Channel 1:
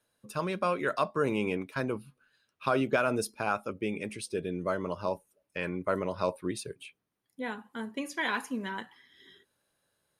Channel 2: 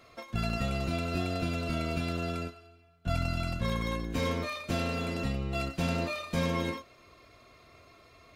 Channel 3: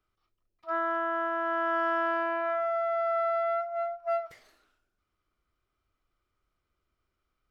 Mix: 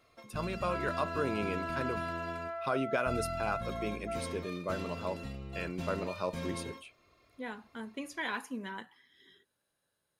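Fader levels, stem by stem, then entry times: -5.0 dB, -10.0 dB, -10.0 dB; 0.00 s, 0.00 s, 0.00 s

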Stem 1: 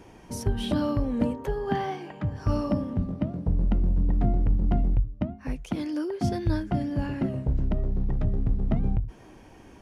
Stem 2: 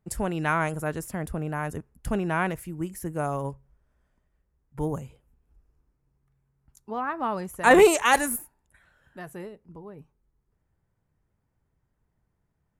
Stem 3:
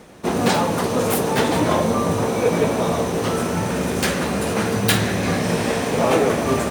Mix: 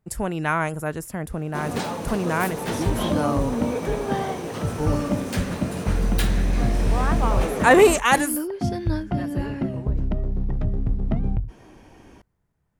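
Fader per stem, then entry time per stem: +1.5 dB, +2.0 dB, -10.0 dB; 2.40 s, 0.00 s, 1.30 s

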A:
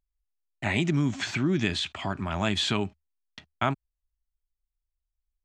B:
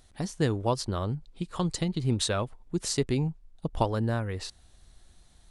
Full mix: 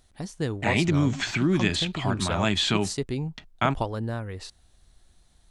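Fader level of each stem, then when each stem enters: +2.5 dB, -2.5 dB; 0.00 s, 0.00 s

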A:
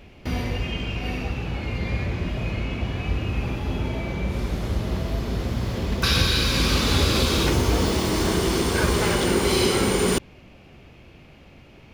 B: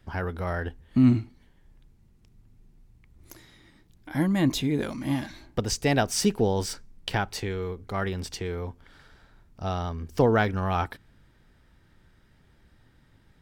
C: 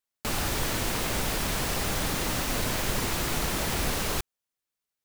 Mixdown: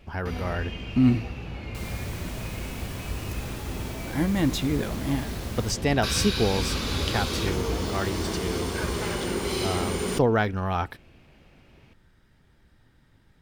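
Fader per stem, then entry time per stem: -7.5 dB, -0.5 dB, -12.0 dB; 0.00 s, 0.00 s, 1.50 s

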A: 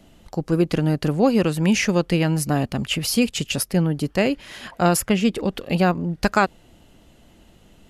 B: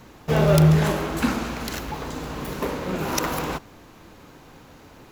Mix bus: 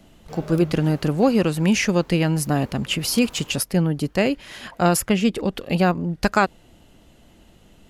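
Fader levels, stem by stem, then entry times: 0.0 dB, -18.5 dB; 0.00 s, 0.00 s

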